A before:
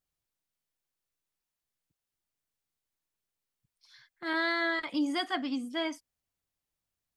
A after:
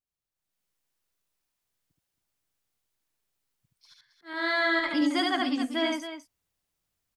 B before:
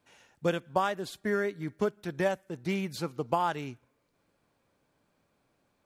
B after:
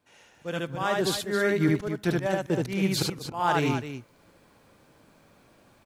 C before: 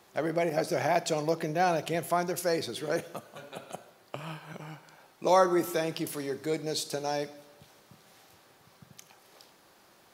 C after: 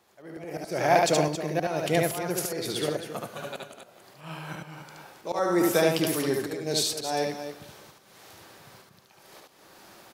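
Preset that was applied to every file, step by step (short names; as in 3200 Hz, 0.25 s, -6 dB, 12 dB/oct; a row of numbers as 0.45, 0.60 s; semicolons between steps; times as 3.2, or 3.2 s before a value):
auto swell 0.354 s; loudspeakers at several distances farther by 25 m -2 dB, 93 m -10 dB; AGC gain up to 12.5 dB; match loudness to -27 LUFS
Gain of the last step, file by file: -9.0, 0.0, -5.5 dB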